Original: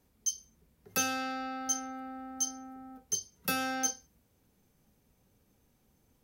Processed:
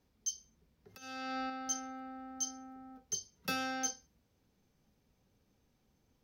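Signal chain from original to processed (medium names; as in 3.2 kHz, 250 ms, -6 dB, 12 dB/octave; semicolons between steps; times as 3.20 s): resonant high shelf 6.9 kHz -7.5 dB, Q 1.5; 0.94–1.50 s: compressor with a negative ratio -37 dBFS, ratio -0.5; trim -4 dB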